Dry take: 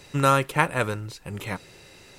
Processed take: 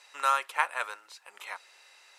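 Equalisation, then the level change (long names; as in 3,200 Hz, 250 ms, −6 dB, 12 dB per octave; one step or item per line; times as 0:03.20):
four-pole ladder high-pass 700 Hz, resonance 25%
Bessel low-pass filter 11,000 Hz, order 2
0.0 dB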